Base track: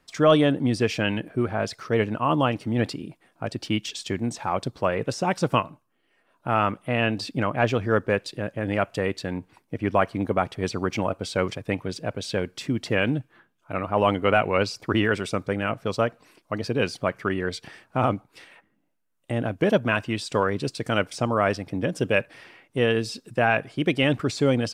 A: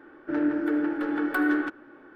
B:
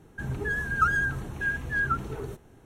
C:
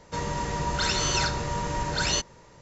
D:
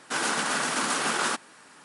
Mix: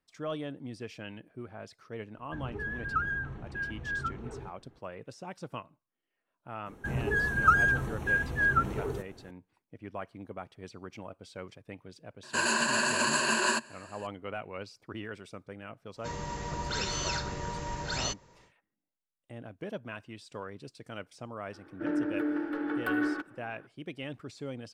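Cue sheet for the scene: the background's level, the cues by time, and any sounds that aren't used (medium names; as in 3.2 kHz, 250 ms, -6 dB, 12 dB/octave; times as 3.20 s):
base track -18.5 dB
2.14 s: add B -7 dB + low-pass 2.8 kHz
6.66 s: add B -1 dB + peaking EQ 610 Hz +4 dB 2.7 oct
12.23 s: add D -4 dB + rippled EQ curve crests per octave 1.4, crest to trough 17 dB
15.92 s: add C -7.5 dB, fades 0.10 s
21.52 s: add A -5.5 dB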